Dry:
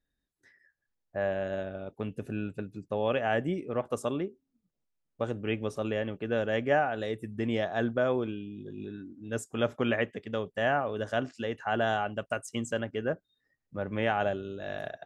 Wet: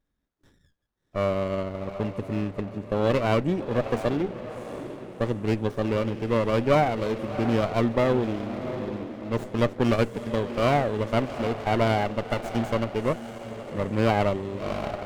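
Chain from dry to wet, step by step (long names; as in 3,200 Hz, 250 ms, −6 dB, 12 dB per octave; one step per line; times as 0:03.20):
feedback delay with all-pass diffusion 707 ms, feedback 43%, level −10 dB
windowed peak hold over 17 samples
level +5.5 dB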